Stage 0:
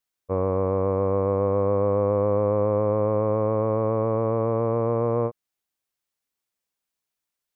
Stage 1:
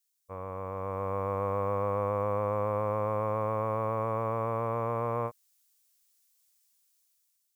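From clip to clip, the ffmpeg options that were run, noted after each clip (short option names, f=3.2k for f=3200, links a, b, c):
-af "equalizer=f=380:w=0.74:g=-15,dynaudnorm=f=370:g=5:m=8.5dB,bass=f=250:g=-9,treble=f=4k:g=13,volume=-5dB"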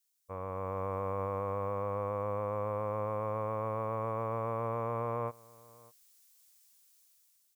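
-af "alimiter=level_in=6dB:limit=-24dB:level=0:latency=1:release=104,volume=-6dB,aecho=1:1:602:0.0668,dynaudnorm=f=110:g=11:m=5.5dB"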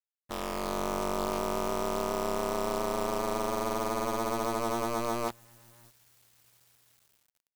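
-af "acrusher=bits=7:dc=4:mix=0:aa=0.000001,aeval=exprs='val(0)*sin(2*PI*120*n/s)':c=same,volume=6.5dB"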